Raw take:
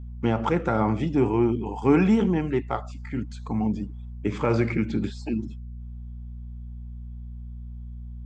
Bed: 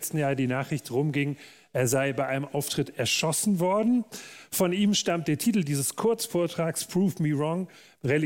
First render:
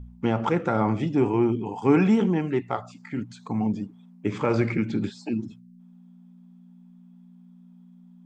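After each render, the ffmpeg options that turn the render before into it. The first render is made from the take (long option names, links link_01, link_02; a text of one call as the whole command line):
ffmpeg -i in.wav -af "bandreject=frequency=60:width_type=h:width=4,bandreject=frequency=120:width_type=h:width=4" out.wav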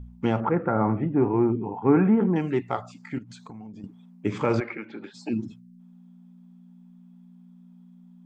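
ffmpeg -i in.wav -filter_complex "[0:a]asettb=1/sr,asplit=3[link_01][link_02][link_03];[link_01]atrim=end=0.404[link_04];[link_02]atrim=start=0.4:end=2.36,asetpts=PTS-STARTPTS,afade=type=in:duration=0.004:curve=qsin,afade=type=out:start_time=1.956:duration=0.004:curve=qsin,lowpass=frequency=1800:width=0.5412,lowpass=frequency=1800:width=1.3066[link_05];[link_03]atrim=start=2.356[link_06];[link_04][link_05]acrossfade=duration=0.004:curve1=hsin:curve2=qsin[link_07];[link_07][link_06]acrossfade=duration=0.004:curve1=qsin:curve2=hsin,asettb=1/sr,asplit=3[link_08][link_09][link_10];[link_08]atrim=end=3.184[link_11];[link_09]atrim=start=3.18:end=3.84,asetpts=PTS-STARTPTS,afade=type=in:duration=0.004:curve=qsin,afade=type=out:start_time=0.656:duration=0.004:curve=qsin,acompressor=threshold=-38dB:ratio=10:attack=3.2:release=140:knee=1:detection=peak[link_12];[link_10]atrim=start=3.836[link_13];[link_11][link_12]acrossfade=duration=0.004:curve1=hsin:curve2=qsin[link_14];[link_14][link_13]acrossfade=duration=0.004:curve1=qsin:curve2=hsin,asplit=3[link_15][link_16][link_17];[link_15]afade=type=out:start_time=4.59:duration=0.02[link_18];[link_16]highpass=550,lowpass=2200,afade=type=in:start_time=4.59:duration=0.02,afade=type=out:start_time=5.13:duration=0.02[link_19];[link_17]afade=type=in:start_time=5.13:duration=0.02[link_20];[link_18][link_19][link_20]amix=inputs=3:normalize=0" out.wav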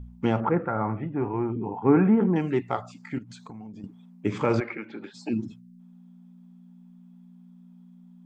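ffmpeg -i in.wav -filter_complex "[0:a]asettb=1/sr,asplit=3[link_01][link_02][link_03];[link_01]atrim=end=0.654[link_04];[link_02]atrim=start=0.65:end=1.56,asetpts=PTS-STARTPTS,afade=type=in:duration=0.004:curve=qsin,afade=type=out:start_time=0.906:duration=0.004:curve=qsin,equalizer=frequency=280:width=0.47:gain=-7[link_05];[link_03]atrim=start=1.556[link_06];[link_04][link_05]acrossfade=duration=0.004:curve1=hsin:curve2=qsin[link_07];[link_07][link_06]acrossfade=duration=0.004:curve1=qsin:curve2=hsin" out.wav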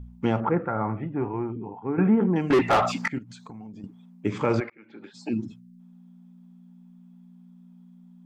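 ffmpeg -i in.wav -filter_complex "[0:a]asettb=1/sr,asplit=3[link_01][link_02][link_03];[link_01]atrim=end=2.504[link_04];[link_02]atrim=start=2.5:end=3.08,asetpts=PTS-STARTPTS,afade=type=in:duration=0.004:curve=qsin,afade=type=out:start_time=0.576:duration=0.004:curve=qsin,asplit=2[link_05][link_06];[link_06]highpass=frequency=720:poles=1,volume=33dB,asoftclip=type=tanh:threshold=-11dB[link_07];[link_05][link_07]amix=inputs=2:normalize=0,lowpass=frequency=2000:poles=1,volume=-6dB[link_08];[link_03]atrim=start=3.076[link_09];[link_04][link_08]acrossfade=duration=0.004:curve1=hsin:curve2=qsin[link_10];[link_10][link_09]acrossfade=duration=0.004:curve1=qsin:curve2=hsin,asplit=3[link_11][link_12][link_13];[link_11]atrim=end=1.98,asetpts=PTS-STARTPTS,afade=type=out:start_time=1.19:duration=0.79:silence=0.251189[link_14];[link_12]atrim=start=1.98:end=4.7,asetpts=PTS-STARTPTS,afade=type=in:duration=0.004:curve=hsin:silence=0.251189,afade=type=out:start_time=2.716:duration=0.004:curve=hsin[link_15];[link_13]atrim=start=4.7,asetpts=PTS-STARTPTS,afade=type=in:duration=0.54[link_16];[link_14][link_15][link_16]concat=n=3:v=0:a=1" out.wav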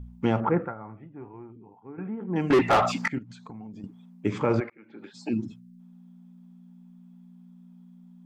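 ffmpeg -i in.wav -filter_complex "[0:a]asettb=1/sr,asplit=3[link_01][link_02][link_03];[link_01]atrim=end=3.154[link_04];[link_02]atrim=start=3.15:end=3.71,asetpts=PTS-STARTPTS,afade=type=in:duration=0.004:curve=qsin,afade=type=out:start_time=0.556:duration=0.004:curve=qsin,highshelf=frequency=4900:gain=-9.5[link_05];[link_03]atrim=start=3.706[link_06];[link_04][link_05]acrossfade=duration=0.004:curve1=hsin:curve2=qsin[link_07];[link_07][link_06]acrossfade=duration=0.004:curve1=qsin:curve2=hsin,asettb=1/sr,asplit=3[link_08][link_09][link_10];[link_08]atrim=end=4.394[link_11];[link_09]atrim=start=4.39:end=4.99,asetpts=PTS-STARTPTS,afade=type=in:duration=0.004:curve=qsin,afade=type=out:start_time=0.596:duration=0.004:curve=qsin,highshelf=frequency=2600:gain=-8[link_12];[link_10]atrim=start=4.986[link_13];[link_11][link_12]acrossfade=duration=0.004:curve1=hsin:curve2=qsin[link_14];[link_14][link_13]acrossfade=duration=0.004:curve1=qsin:curve2=hsin,asplit=3[link_15][link_16][link_17];[link_15]atrim=end=0.75,asetpts=PTS-STARTPTS,afade=type=out:start_time=0.62:duration=0.13:silence=0.188365[link_18];[link_16]atrim=start=0.75:end=2.27,asetpts=PTS-STARTPTS,volume=-14.5dB[link_19];[link_17]atrim=start=2.27,asetpts=PTS-STARTPTS,afade=type=in:duration=0.13:silence=0.188365[link_20];[link_18][link_19][link_20]concat=n=3:v=0:a=1" out.wav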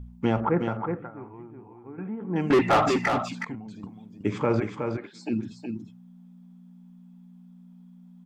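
ffmpeg -i in.wav -af "aecho=1:1:368:0.501" out.wav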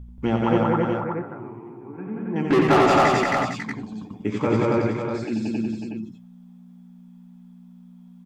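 ffmpeg -i in.wav -filter_complex "[0:a]asplit=2[link_01][link_02];[link_02]adelay=14,volume=-12dB[link_03];[link_01][link_03]amix=inputs=2:normalize=0,aecho=1:1:87.46|180.8|271.1:0.562|0.891|1" out.wav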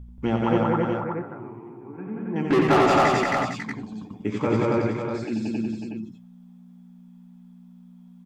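ffmpeg -i in.wav -af "volume=-1.5dB" out.wav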